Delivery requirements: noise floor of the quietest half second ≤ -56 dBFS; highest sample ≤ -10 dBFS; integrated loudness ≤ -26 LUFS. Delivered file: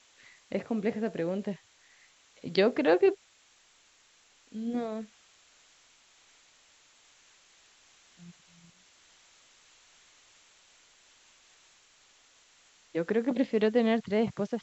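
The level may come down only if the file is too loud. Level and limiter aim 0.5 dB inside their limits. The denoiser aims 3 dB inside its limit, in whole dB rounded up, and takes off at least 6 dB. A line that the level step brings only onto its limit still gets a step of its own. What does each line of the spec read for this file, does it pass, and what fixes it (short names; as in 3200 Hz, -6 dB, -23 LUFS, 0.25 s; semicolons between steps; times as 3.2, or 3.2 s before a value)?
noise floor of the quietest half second -63 dBFS: OK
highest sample -11.5 dBFS: OK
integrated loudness -29.5 LUFS: OK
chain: none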